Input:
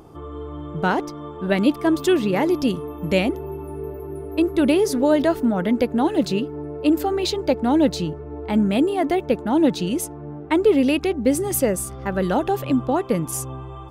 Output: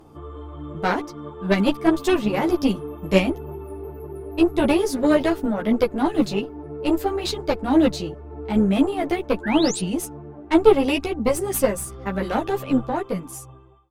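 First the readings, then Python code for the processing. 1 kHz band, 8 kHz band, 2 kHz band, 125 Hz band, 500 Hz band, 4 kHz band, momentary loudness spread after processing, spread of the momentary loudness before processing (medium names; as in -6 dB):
-1.0 dB, -2.0 dB, 0.0 dB, -1.5 dB, -1.0 dB, 0.0 dB, 16 LU, 14 LU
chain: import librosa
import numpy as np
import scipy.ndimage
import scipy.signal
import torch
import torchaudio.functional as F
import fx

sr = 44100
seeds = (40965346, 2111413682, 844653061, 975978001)

y = fx.fade_out_tail(x, sr, length_s=1.11)
y = fx.cheby_harmonics(y, sr, harmonics=(2, 3, 7), levels_db=(-11, -16, -43), full_scale_db=-5.5)
y = fx.spec_paint(y, sr, seeds[0], shape='rise', start_s=9.43, length_s=0.37, low_hz=1500.0, high_hz=10000.0, level_db=-34.0)
y = fx.ensemble(y, sr)
y = y * librosa.db_to_amplitude(6.5)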